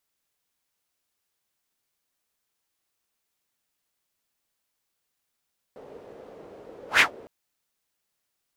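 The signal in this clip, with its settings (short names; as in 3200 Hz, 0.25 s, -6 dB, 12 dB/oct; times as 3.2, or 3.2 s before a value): whoosh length 1.51 s, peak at 1.24, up 0.13 s, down 0.12 s, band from 470 Hz, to 2200 Hz, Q 3.1, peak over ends 30 dB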